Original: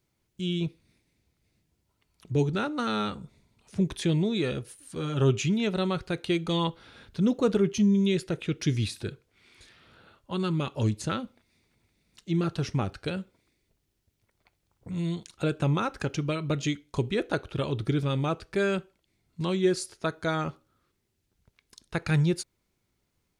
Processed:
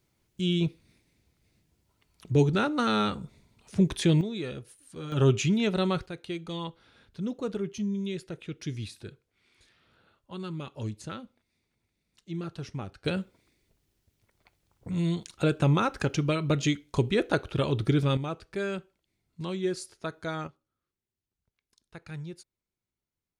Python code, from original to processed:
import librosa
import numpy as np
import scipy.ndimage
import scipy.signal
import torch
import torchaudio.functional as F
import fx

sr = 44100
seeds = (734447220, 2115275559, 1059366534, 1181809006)

y = fx.gain(x, sr, db=fx.steps((0.0, 3.0), (4.21, -6.5), (5.12, 1.0), (6.06, -8.5), (13.05, 2.5), (18.17, -5.5), (20.47, -15.5)))